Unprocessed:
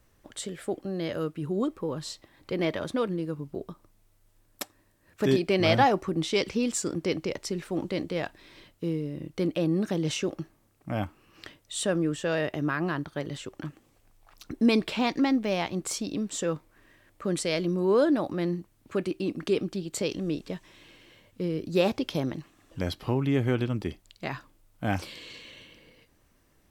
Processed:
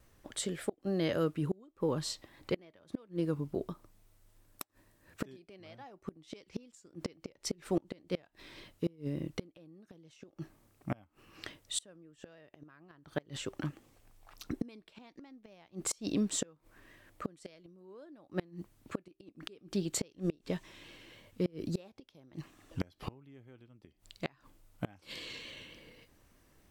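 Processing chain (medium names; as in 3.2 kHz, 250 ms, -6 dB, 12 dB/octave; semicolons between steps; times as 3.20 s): inverted gate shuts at -21 dBFS, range -30 dB; vibrato 3.5 Hz 39 cents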